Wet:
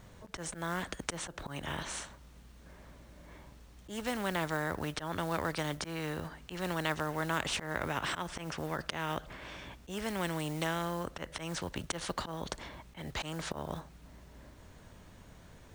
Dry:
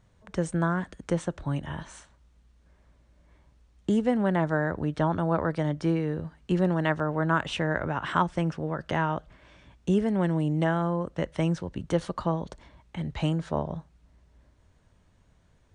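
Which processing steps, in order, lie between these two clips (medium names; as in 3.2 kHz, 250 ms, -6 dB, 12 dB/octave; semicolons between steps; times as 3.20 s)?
slow attack 207 ms; companded quantiser 8-bit; spectrum-flattening compressor 2:1; trim -3.5 dB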